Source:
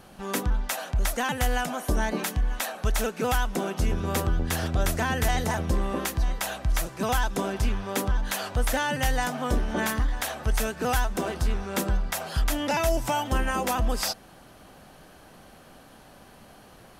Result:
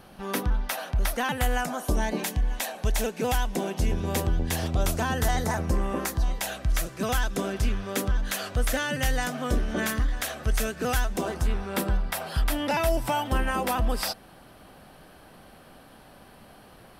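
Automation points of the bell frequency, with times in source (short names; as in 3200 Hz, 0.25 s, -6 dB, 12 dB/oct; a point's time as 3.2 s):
bell -9 dB 0.39 oct
1.33 s 7300 Hz
2.03 s 1300 Hz
4.51 s 1300 Hz
5.95 s 4300 Hz
6.55 s 890 Hz
11.08 s 890 Hz
11.51 s 6600 Hz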